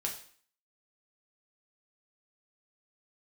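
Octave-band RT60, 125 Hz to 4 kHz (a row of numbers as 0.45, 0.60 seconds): 0.40, 0.55, 0.45, 0.50, 0.55, 0.50 seconds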